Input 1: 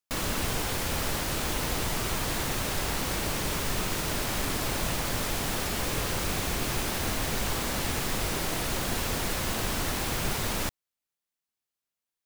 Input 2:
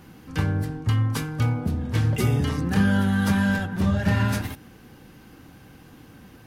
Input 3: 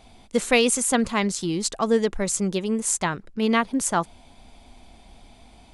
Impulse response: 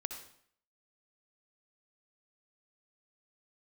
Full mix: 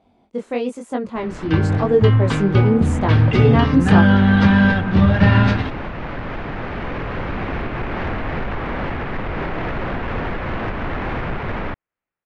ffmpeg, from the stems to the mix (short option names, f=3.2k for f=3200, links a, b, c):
-filter_complex "[0:a]lowpass=f=2.2k:w=0.5412,lowpass=f=2.2k:w=1.3066,alimiter=level_in=1dB:limit=-24dB:level=0:latency=1:release=282,volume=-1dB,asoftclip=type=tanh:threshold=-29dB,adelay=1050,volume=-1.5dB[a];[1:a]lowpass=f=4k:w=0.5412,lowpass=f=4k:w=1.3066,adelay=1150,volume=-1dB[b];[2:a]flanger=delay=20:depth=5.3:speed=1,bandpass=f=370:t=q:w=0.59:csg=0,volume=0.5dB,asplit=2[c][d];[d]apad=whole_len=586934[e];[a][e]sidechaincompress=threshold=-29dB:ratio=8:attack=16:release=299[f];[f][b][c]amix=inputs=3:normalize=0,dynaudnorm=f=310:g=9:m=14dB"